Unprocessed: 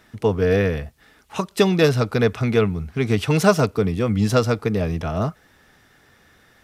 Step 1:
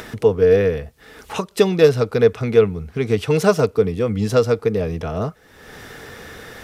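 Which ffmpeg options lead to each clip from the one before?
-af "equalizer=f=460:t=o:w=0.34:g=9,acompressor=mode=upward:threshold=-19dB:ratio=2.5,volume=-2dB"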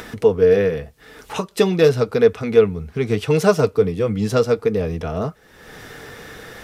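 -af "flanger=delay=4:depth=2.8:regen=-65:speed=0.41:shape=sinusoidal,volume=4dB"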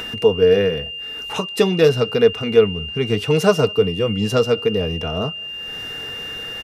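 -filter_complex "[0:a]aeval=exprs='val(0)+0.0398*sin(2*PI*2800*n/s)':c=same,asplit=2[a][b];[b]adelay=209.9,volume=-29dB,highshelf=f=4k:g=-4.72[c];[a][c]amix=inputs=2:normalize=0"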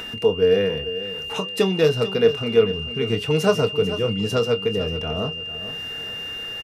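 -filter_complex "[0:a]asplit=2[a][b];[b]adelay=26,volume=-12dB[c];[a][c]amix=inputs=2:normalize=0,aecho=1:1:445|890|1335:0.224|0.0739|0.0244,volume=-4dB"

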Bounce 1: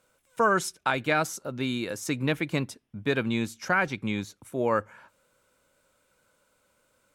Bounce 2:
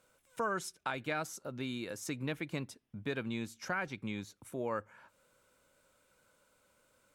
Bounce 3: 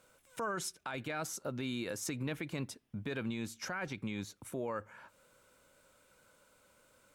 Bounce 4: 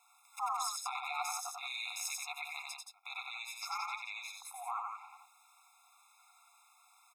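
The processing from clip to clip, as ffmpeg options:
-af "acompressor=threshold=-47dB:ratio=1.5,volume=-2dB"
-af "alimiter=level_in=8.5dB:limit=-24dB:level=0:latency=1:release=30,volume=-8.5dB,volume=4dB"
-af "aeval=exprs='val(0)*sin(2*PI*110*n/s)':c=same,aecho=1:1:93.29|174.9:0.708|0.501,afftfilt=real='re*eq(mod(floor(b*sr/1024/690),2),1)':imag='im*eq(mod(floor(b*sr/1024/690),2),1)':win_size=1024:overlap=0.75,volume=6.5dB"

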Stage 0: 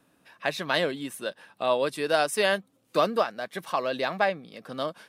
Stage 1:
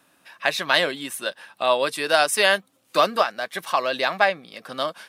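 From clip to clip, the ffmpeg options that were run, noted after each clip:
-af "lowshelf=f=480:g=-12,bandreject=f=460:w=12,volume=8.5dB"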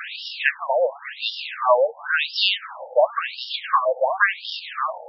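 -af "aeval=exprs='val(0)+0.5*0.0668*sgn(val(0))':c=same,afftfilt=real='re*between(b*sr/1024,610*pow(4000/610,0.5+0.5*sin(2*PI*0.94*pts/sr))/1.41,610*pow(4000/610,0.5+0.5*sin(2*PI*0.94*pts/sr))*1.41)':imag='im*between(b*sr/1024,610*pow(4000/610,0.5+0.5*sin(2*PI*0.94*pts/sr))/1.41,610*pow(4000/610,0.5+0.5*sin(2*PI*0.94*pts/sr))*1.41)':win_size=1024:overlap=0.75,volume=3.5dB"

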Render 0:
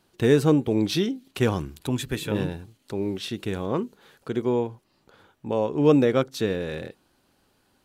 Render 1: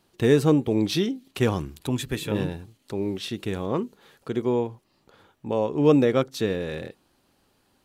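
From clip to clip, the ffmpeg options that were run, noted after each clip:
-af "bandreject=f=1.5k:w=19"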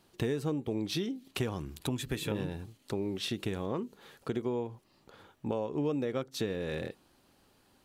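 -af "acompressor=threshold=-30dB:ratio=6"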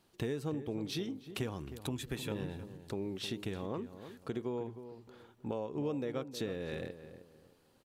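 -filter_complex "[0:a]asplit=2[a][b];[b]adelay=312,lowpass=f=1.4k:p=1,volume=-11dB,asplit=2[c][d];[d]adelay=312,lowpass=f=1.4k:p=1,volume=0.32,asplit=2[e][f];[f]adelay=312,lowpass=f=1.4k:p=1,volume=0.32[g];[a][c][e][g]amix=inputs=4:normalize=0,volume=-4.5dB"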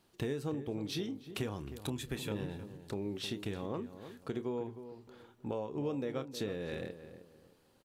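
-filter_complex "[0:a]asplit=2[a][b];[b]adelay=29,volume=-13.5dB[c];[a][c]amix=inputs=2:normalize=0"

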